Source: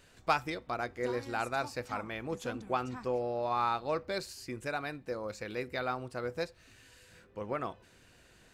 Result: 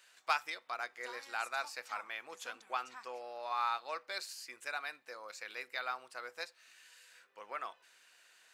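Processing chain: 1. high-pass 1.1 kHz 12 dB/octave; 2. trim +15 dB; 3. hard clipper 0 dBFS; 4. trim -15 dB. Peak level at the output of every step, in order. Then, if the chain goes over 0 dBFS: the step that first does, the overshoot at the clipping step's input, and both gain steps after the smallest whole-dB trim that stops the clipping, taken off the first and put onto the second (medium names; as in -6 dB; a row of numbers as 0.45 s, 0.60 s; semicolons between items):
-16.5 dBFS, -1.5 dBFS, -1.5 dBFS, -16.5 dBFS; nothing clips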